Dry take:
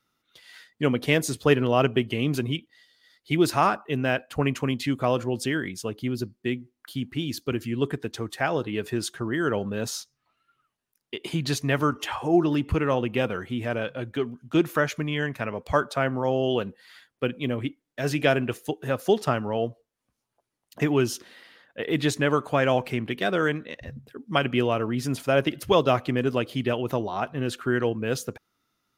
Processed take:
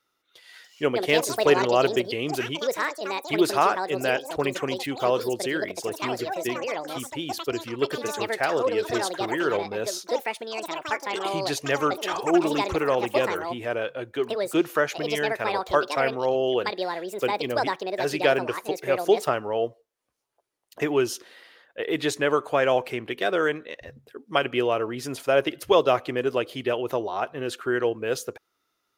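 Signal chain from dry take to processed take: ever faster or slower copies 407 ms, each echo +7 st, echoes 2, each echo -6 dB; resonant low shelf 290 Hz -8.5 dB, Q 1.5

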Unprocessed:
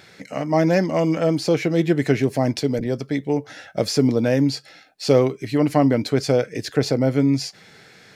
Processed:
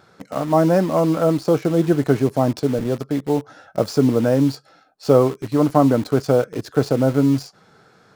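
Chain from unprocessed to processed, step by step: resonant high shelf 1.6 kHz -7 dB, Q 3; in parallel at -5 dB: bit crusher 5-bit; on the sum: trim -2.5 dB

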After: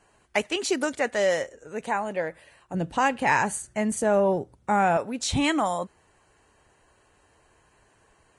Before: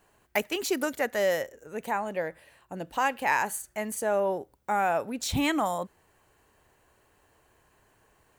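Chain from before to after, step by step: 2.74–4.97 s: peaking EQ 120 Hz +12.5 dB 2.3 oct; trim +2.5 dB; Vorbis 32 kbps 22.05 kHz

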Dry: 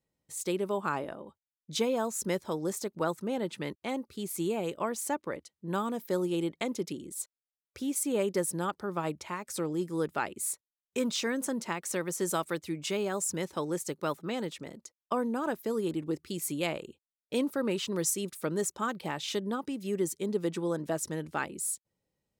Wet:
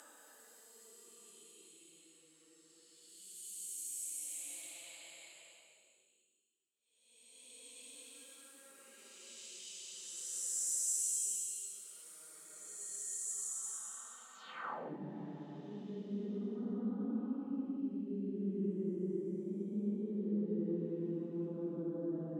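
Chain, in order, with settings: Paulstretch 4.2×, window 0.50 s, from 15.49 s; band-pass sweep 7.8 kHz -> 230 Hz, 14.33–14.99 s; trim -1 dB

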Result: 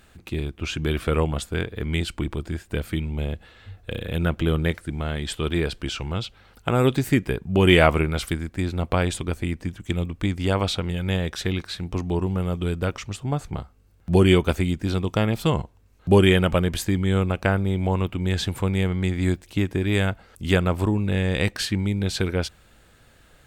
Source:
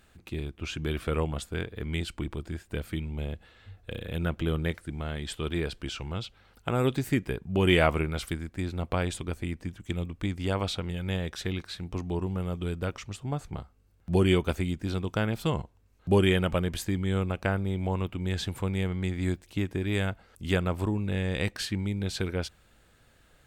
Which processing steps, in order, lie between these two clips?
14.98–15.40 s: band-stop 1.5 kHz, Q 8; trim +6.5 dB

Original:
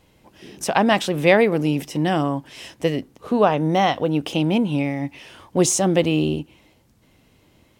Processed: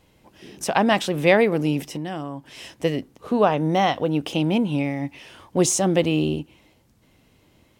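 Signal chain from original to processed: 1.80–2.48 s: compression 4:1, threshold -27 dBFS, peak gain reduction 9 dB; trim -1.5 dB

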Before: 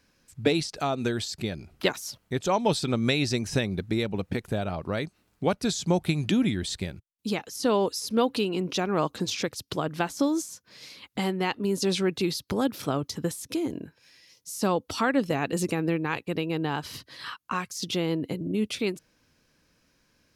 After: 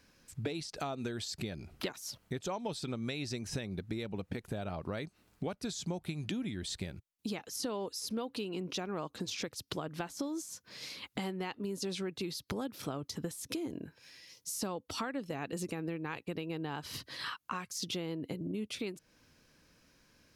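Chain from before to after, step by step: compression 5:1, threshold -37 dBFS, peak gain reduction 17.5 dB; trim +1 dB

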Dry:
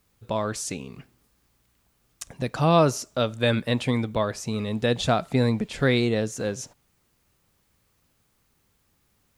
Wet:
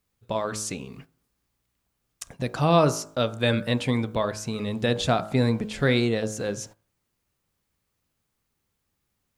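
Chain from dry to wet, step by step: de-hum 53.37 Hz, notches 31; gate -45 dBFS, range -9 dB

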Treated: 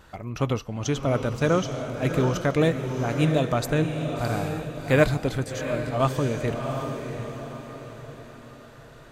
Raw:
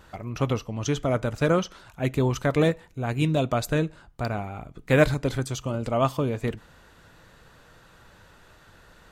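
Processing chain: on a send: echo that smears into a reverb 718 ms, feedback 44%, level -6 dB; 5.44–6.00 s: on the sum: detune thickener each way 15 cents

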